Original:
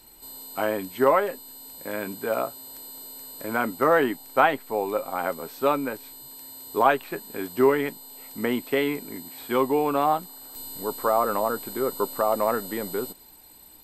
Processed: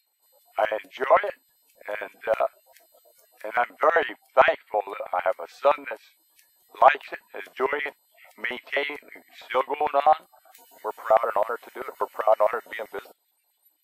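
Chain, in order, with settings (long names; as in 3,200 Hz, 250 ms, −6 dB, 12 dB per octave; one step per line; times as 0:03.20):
auto-filter high-pass square 7.7 Hz 650–2,000 Hz
noise reduction from a noise print of the clip's start 21 dB
level −1 dB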